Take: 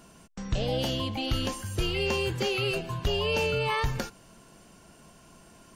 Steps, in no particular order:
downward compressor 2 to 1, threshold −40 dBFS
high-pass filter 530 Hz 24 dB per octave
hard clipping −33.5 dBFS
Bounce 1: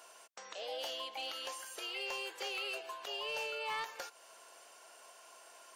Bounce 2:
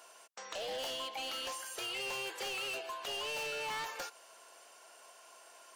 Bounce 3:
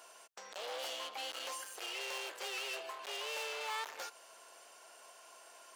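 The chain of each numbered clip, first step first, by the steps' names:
downward compressor, then high-pass filter, then hard clipping
high-pass filter, then hard clipping, then downward compressor
hard clipping, then downward compressor, then high-pass filter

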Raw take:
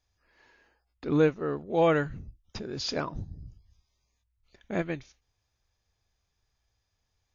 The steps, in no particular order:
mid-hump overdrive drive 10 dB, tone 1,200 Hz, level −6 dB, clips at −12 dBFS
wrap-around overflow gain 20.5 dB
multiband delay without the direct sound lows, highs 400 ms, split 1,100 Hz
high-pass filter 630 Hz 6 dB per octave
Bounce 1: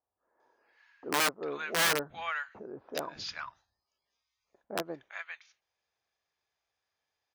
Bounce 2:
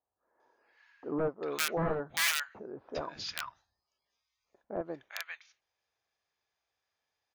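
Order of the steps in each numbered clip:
multiband delay without the direct sound, then mid-hump overdrive, then wrap-around overflow, then high-pass filter
high-pass filter, then mid-hump overdrive, then wrap-around overflow, then multiband delay without the direct sound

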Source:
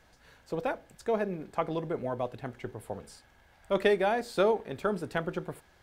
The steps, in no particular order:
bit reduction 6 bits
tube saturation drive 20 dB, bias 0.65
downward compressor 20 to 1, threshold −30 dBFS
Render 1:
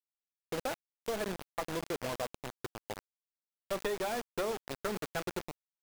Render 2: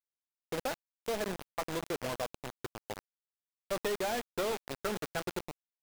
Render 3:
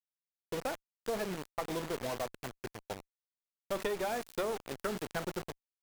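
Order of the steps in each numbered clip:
tube saturation, then bit reduction, then downward compressor
tube saturation, then downward compressor, then bit reduction
bit reduction, then tube saturation, then downward compressor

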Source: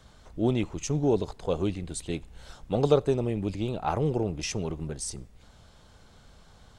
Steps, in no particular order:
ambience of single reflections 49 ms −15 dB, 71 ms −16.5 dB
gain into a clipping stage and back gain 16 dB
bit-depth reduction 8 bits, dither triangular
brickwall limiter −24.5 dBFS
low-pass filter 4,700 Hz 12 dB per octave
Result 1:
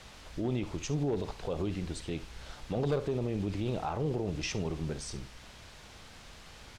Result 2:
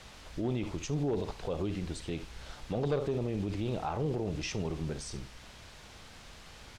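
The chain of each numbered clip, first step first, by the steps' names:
bit-depth reduction, then low-pass filter, then gain into a clipping stage and back, then brickwall limiter, then ambience of single reflections
bit-depth reduction, then ambience of single reflections, then gain into a clipping stage and back, then brickwall limiter, then low-pass filter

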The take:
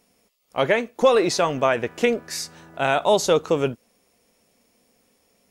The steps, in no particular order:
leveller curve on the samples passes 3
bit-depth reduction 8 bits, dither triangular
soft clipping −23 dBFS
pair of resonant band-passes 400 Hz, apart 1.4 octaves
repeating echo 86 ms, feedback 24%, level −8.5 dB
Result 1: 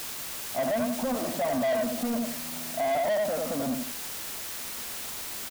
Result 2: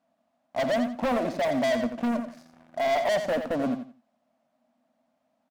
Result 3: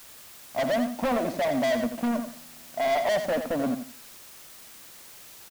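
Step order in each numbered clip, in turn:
repeating echo, then soft clipping, then pair of resonant band-passes, then bit-depth reduction, then leveller curve on the samples
bit-depth reduction, then pair of resonant band-passes, then leveller curve on the samples, then soft clipping, then repeating echo
pair of resonant band-passes, then leveller curve on the samples, then soft clipping, then bit-depth reduction, then repeating echo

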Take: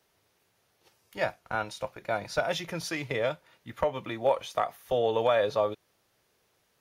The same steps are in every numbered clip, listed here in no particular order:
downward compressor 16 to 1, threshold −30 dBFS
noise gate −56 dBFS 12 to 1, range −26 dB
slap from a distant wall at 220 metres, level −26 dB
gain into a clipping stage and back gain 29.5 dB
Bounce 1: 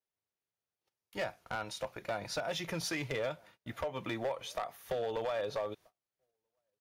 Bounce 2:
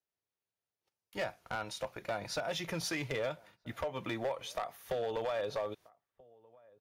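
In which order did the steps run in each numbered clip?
downward compressor, then gain into a clipping stage and back, then slap from a distant wall, then noise gate
downward compressor, then noise gate, then slap from a distant wall, then gain into a clipping stage and back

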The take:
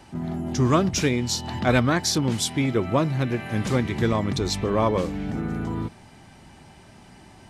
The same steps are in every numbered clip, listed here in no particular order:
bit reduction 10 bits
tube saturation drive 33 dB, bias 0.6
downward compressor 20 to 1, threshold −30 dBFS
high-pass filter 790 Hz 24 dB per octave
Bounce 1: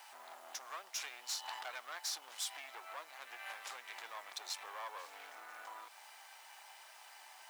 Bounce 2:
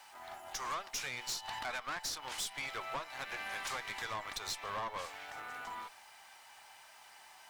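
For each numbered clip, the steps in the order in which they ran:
downward compressor, then tube saturation, then bit reduction, then high-pass filter
high-pass filter, then bit reduction, then downward compressor, then tube saturation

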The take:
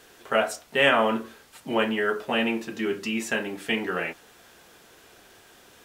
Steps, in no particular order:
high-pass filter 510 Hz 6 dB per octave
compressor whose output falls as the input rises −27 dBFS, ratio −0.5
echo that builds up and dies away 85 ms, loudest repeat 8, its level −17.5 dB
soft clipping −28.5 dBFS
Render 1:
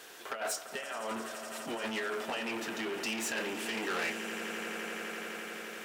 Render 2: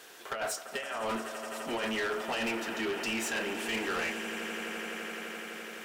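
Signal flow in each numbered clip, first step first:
compressor whose output falls as the input rises, then echo that builds up and dies away, then soft clipping, then high-pass filter
high-pass filter, then compressor whose output falls as the input rises, then echo that builds up and dies away, then soft clipping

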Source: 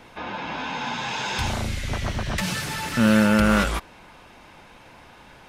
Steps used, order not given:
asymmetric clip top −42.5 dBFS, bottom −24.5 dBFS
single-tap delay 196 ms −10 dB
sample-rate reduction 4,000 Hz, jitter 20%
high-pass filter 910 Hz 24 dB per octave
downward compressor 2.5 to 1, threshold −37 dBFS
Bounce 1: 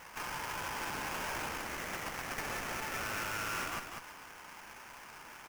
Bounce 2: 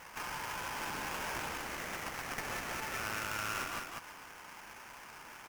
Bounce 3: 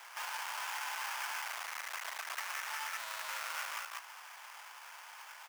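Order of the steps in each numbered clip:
high-pass filter, then asymmetric clip, then sample-rate reduction, then single-tap delay, then downward compressor
high-pass filter, then sample-rate reduction, then single-tap delay, then downward compressor, then asymmetric clip
single-tap delay, then asymmetric clip, then sample-rate reduction, then high-pass filter, then downward compressor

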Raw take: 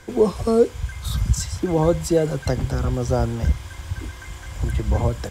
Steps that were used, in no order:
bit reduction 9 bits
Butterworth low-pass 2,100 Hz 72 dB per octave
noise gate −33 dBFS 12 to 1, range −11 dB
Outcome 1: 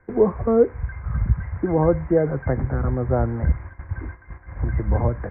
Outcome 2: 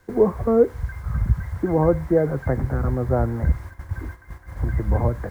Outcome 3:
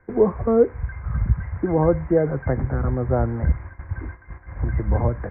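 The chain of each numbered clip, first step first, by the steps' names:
bit reduction, then Butterworth low-pass, then noise gate
Butterworth low-pass, then bit reduction, then noise gate
bit reduction, then noise gate, then Butterworth low-pass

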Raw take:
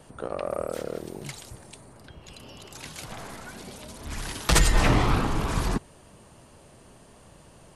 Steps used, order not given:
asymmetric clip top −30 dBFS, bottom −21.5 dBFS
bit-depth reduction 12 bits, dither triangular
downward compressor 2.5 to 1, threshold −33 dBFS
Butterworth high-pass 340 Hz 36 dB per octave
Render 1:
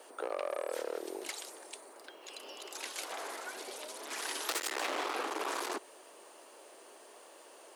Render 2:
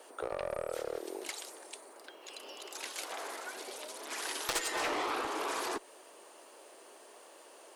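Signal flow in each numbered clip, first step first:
asymmetric clip, then bit-depth reduction, then Butterworth high-pass, then downward compressor
bit-depth reduction, then Butterworth high-pass, then downward compressor, then asymmetric clip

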